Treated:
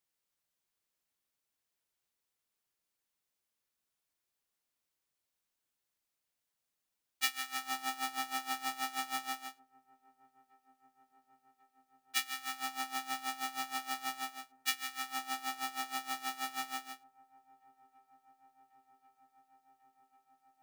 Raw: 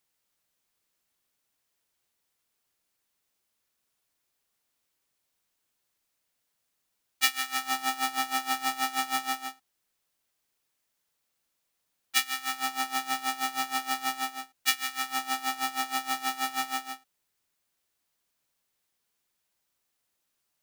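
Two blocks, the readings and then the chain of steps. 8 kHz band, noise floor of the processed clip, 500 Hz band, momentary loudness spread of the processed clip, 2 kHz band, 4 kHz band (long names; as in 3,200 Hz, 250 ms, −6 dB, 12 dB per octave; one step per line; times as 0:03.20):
−8.0 dB, below −85 dBFS, −8.0 dB, 6 LU, −8.0 dB, −8.0 dB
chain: delay with a low-pass on its return 1,091 ms, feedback 82%, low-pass 590 Hz, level −20 dB
level −8 dB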